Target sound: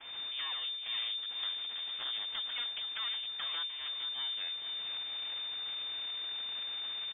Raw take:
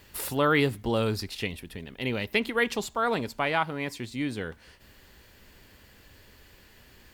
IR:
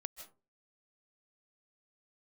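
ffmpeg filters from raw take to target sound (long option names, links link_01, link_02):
-filter_complex "[0:a]aeval=exprs='val(0)+0.5*0.015*sgn(val(0))':channel_layout=same,aemphasis=mode=production:type=75kf,agate=range=-33dB:threshold=-25dB:ratio=3:detection=peak,deesser=0.6,equalizer=frequency=1200:width_type=o:width=0.41:gain=12,acompressor=threshold=-36dB:ratio=12,asettb=1/sr,asplit=3[link_01][link_02][link_03];[link_01]atrim=end=0.974[link_04];[link_02]atrim=start=0.97:end=3.09,asetpts=PTS-STARTPTS,afade=type=in:duration=0.004:curve=qsin,afade=type=out:start_time=2.116:duration=0.004:curve=qsin,afreqshift=-100[link_05];[link_03]atrim=start=3.086[link_06];[link_04][link_05]acrossfade=duration=0.004:curve1=hsin:curve2=qsin[link_07];[link_07][link_06]acrossfade=duration=0.004:curve1=qsin:curve2=hsin,aeval=exprs='abs(val(0))':channel_layout=same,aecho=1:1:463|926|1389|1852:0.355|0.11|0.0341|0.0106,lowpass=frequency=3100:width_type=q:width=0.5098,lowpass=frequency=3100:width_type=q:width=0.6013,lowpass=frequency=3100:width_type=q:width=0.9,lowpass=frequency=3100:width_type=q:width=2.563,afreqshift=-3600"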